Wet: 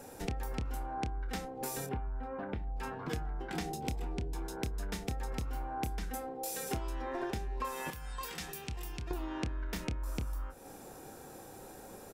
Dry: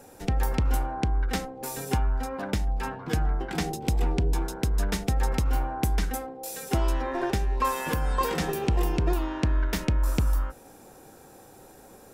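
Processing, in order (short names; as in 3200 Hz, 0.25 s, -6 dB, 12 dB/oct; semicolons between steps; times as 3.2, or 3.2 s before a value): 7.9–9.11 passive tone stack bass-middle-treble 5-5-5; compressor 4:1, threshold -36 dBFS, peak gain reduction 13.5 dB; 1.86–2.76 air absorption 500 m; doubler 28 ms -10.5 dB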